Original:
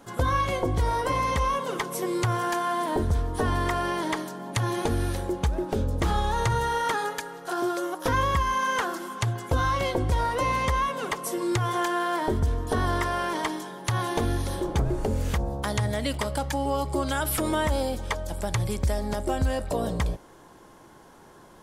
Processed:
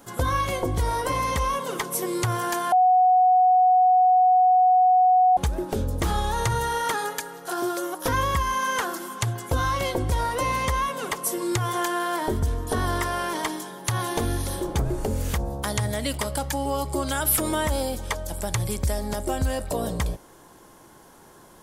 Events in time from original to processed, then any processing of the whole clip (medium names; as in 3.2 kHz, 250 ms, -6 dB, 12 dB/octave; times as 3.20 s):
2.72–5.37 s: bleep 737 Hz -14 dBFS
whole clip: treble shelf 7.6 kHz +11.5 dB